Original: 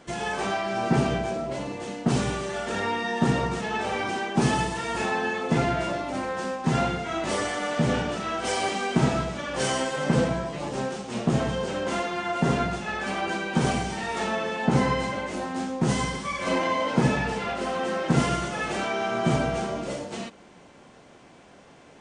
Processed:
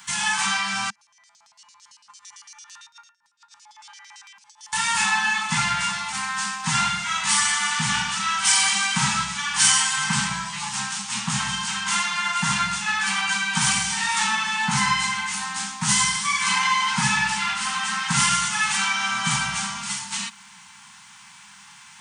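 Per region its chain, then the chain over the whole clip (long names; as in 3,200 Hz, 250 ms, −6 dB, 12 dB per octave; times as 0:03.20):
0:00.90–0:04.73: tuned comb filter 94 Hz, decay 0.52 s, harmonics odd, mix 100% + compressor whose output falls as the input rises −45 dBFS, ratio −0.5 + auto-filter band-pass square 8.9 Hz 970–5,400 Hz
whole clip: Chebyshev band-stop filter 210–870 Hz, order 4; RIAA equalisation recording; level +6.5 dB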